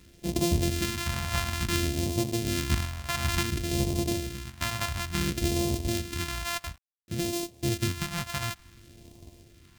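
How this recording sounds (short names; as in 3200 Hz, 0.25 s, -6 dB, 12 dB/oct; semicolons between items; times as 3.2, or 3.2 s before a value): a buzz of ramps at a fixed pitch in blocks of 128 samples; random-step tremolo; a quantiser's noise floor 10-bit, dither none; phasing stages 2, 0.57 Hz, lowest notch 340–1400 Hz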